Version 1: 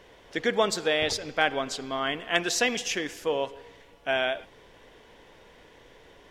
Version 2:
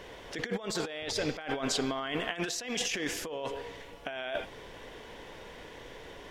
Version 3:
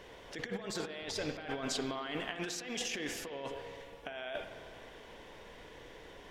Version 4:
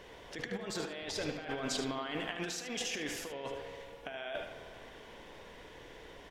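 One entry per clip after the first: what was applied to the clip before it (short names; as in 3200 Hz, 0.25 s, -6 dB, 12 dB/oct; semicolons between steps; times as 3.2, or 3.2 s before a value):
negative-ratio compressor -35 dBFS, ratio -1
spring tank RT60 2.4 s, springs 51 ms, chirp 45 ms, DRR 9 dB; gain -5.5 dB
echo 75 ms -9 dB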